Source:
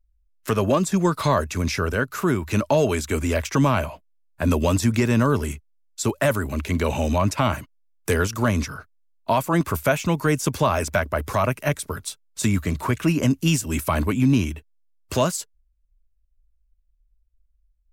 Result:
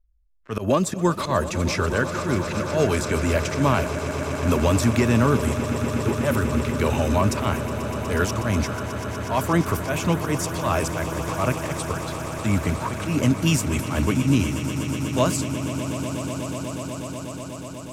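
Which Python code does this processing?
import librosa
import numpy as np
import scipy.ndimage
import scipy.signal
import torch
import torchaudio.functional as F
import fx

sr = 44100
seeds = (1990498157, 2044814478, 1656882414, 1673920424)

y = fx.env_lowpass(x, sr, base_hz=1300.0, full_db=-18.5)
y = fx.auto_swell(y, sr, attack_ms=103.0)
y = fx.echo_swell(y, sr, ms=122, loudest=8, wet_db=-14.5)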